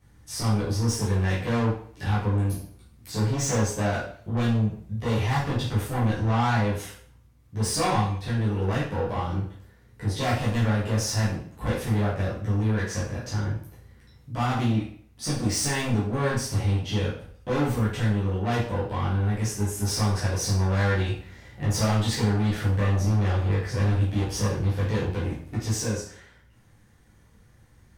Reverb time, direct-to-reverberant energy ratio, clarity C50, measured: 0.55 s, −10.0 dB, 3.5 dB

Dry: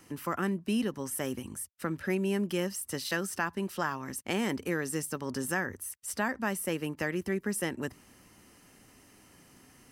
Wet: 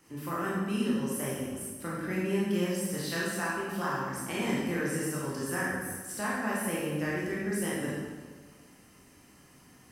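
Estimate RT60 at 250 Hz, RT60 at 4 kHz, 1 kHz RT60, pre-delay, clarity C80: 1.6 s, 1.2 s, 1.4 s, 18 ms, 1.5 dB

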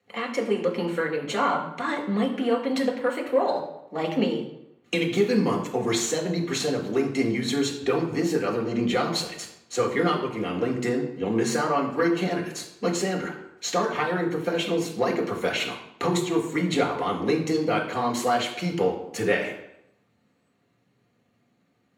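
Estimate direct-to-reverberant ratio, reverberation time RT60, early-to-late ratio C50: 0.0 dB, 0.85 s, 7.5 dB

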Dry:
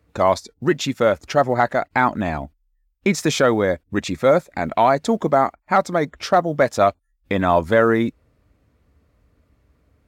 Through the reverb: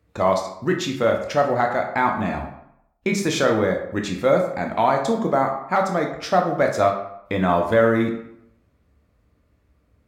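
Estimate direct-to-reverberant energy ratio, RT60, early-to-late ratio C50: 2.0 dB, 0.75 s, 6.5 dB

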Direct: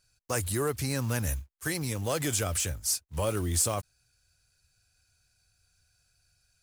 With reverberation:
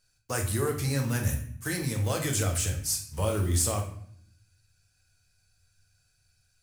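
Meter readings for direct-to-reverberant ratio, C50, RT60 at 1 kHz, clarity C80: 1.5 dB, 7.5 dB, 0.55 s, 11.5 dB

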